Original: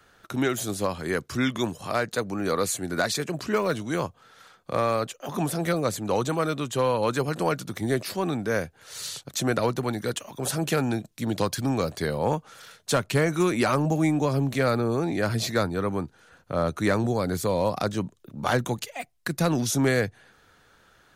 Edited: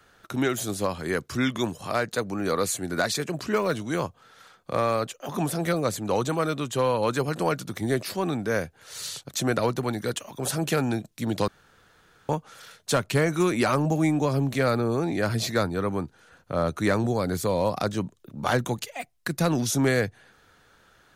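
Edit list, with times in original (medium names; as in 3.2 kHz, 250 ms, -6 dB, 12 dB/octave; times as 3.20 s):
11.48–12.29 s: room tone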